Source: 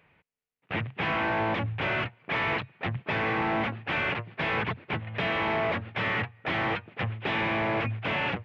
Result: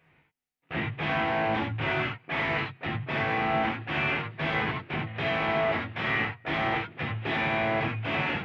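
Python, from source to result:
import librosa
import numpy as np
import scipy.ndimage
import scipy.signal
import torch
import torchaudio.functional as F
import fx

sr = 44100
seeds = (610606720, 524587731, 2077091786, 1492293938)

y = fx.rev_gated(x, sr, seeds[0], gate_ms=110, shape='flat', drr_db=-3.0)
y = y * 10.0 ** (-4.5 / 20.0)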